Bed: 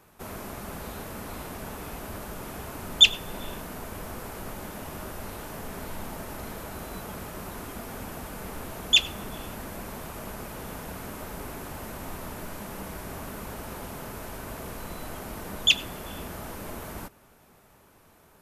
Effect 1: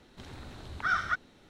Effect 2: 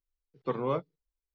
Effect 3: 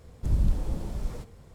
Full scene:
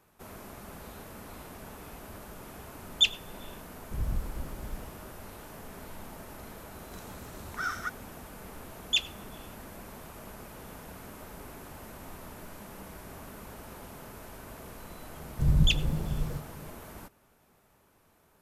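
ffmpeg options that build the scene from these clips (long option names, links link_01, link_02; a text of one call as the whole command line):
ffmpeg -i bed.wav -i cue0.wav -i cue1.wav -i cue2.wav -filter_complex "[3:a]asplit=2[link_01][link_02];[0:a]volume=-7.5dB[link_03];[1:a]highshelf=frequency=5200:width_type=q:width=1.5:gain=10.5[link_04];[link_02]equalizer=frequency=150:width_type=o:width=0.27:gain=14.5[link_05];[link_01]atrim=end=1.54,asetpts=PTS-STARTPTS,volume=-8dB,afade=type=in:duration=0.004:curve=hsin,afade=type=out:start_time=1.536:duration=0.004:curve=hsin,adelay=3680[link_06];[link_04]atrim=end=1.49,asetpts=PTS-STARTPTS,volume=-4.5dB,afade=type=in:duration=0.004:curve=hsin,afade=type=out:start_time=1.486:duration=0.004:curve=hsin,adelay=297234S[link_07];[link_05]atrim=end=1.54,asetpts=PTS-STARTPTS,volume=-1dB,afade=type=in:duration=0.004:curve=hsin,afade=type=out:start_time=1.536:duration=0.004:curve=hsin,adelay=15160[link_08];[link_03][link_06][link_07][link_08]amix=inputs=4:normalize=0" out.wav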